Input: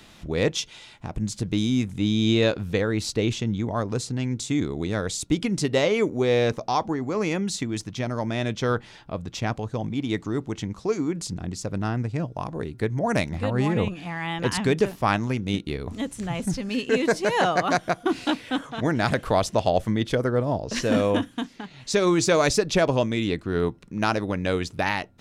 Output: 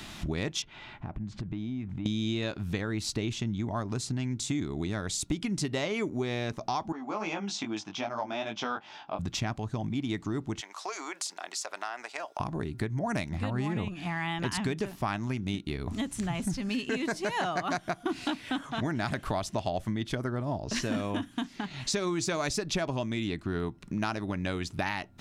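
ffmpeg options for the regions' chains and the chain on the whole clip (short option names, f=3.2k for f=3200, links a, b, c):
-filter_complex "[0:a]asettb=1/sr,asplit=3[a][b][c];[a]atrim=end=0.624[d];[b]atrim=start=0.62:end=2.06,asetpts=PTS-STARTPTS,afade=t=in:d=0.004:c=qsin,afade=t=out:st=1.436:d=0.004:c=qsin,lowpass=2k,acompressor=threshold=-42dB:ratio=3:attack=3.2:release=140:knee=1:detection=peak[e];[c]atrim=start=2.056[f];[d][e]acrossfade=d=0.004:c1=hsin:c2=qsin[g];[g][f]acrossfade=d=0.004:c1=qsin:c2=hsin,asettb=1/sr,asplit=3[h][i][j];[h]atrim=end=6.924[k];[i]atrim=start=6.92:end=9.19,asetpts=PTS-STARTPTS,afade=t=in:d=0.004:c=qsin,afade=t=out:st=2.266:d=0.004:c=qsin,flanger=delay=18:depth=2.6:speed=2.5,highpass=370,equalizer=f=390:t=q:w=4:g=-6,equalizer=f=810:t=q:w=4:g=6,equalizer=f=1.9k:t=q:w=4:g=-8,equalizer=f=4.3k:t=q:w=4:g=-8,lowpass=f=5.4k:w=0.5412,lowpass=f=5.4k:w=1.3066[l];[j]atrim=start=9.186[m];[k][l]acrossfade=d=0.004:c1=hsin:c2=qsin[n];[n][m]acrossfade=d=0.004:c1=qsin:c2=hsin,asettb=1/sr,asplit=3[o][p][q];[o]atrim=end=10.614[r];[p]atrim=start=10.61:end=12.4,asetpts=PTS-STARTPTS,afade=t=in:d=0.004:c=qsin,afade=t=out:st=1.786:d=0.004:c=qsin,highpass=f=610:w=0.5412,highpass=f=610:w=1.3066,acompressor=threshold=-37dB:ratio=2.5:attack=3.2:release=140:knee=1:detection=peak[s];[q]atrim=start=12.396[t];[r][s]acrossfade=d=0.004:c1=hsin:c2=qsin[u];[u][t]acrossfade=d=0.004:c1=qsin:c2=hsin,equalizer=f=490:t=o:w=0.27:g=-13,acompressor=threshold=-37dB:ratio=4,volume=6.5dB"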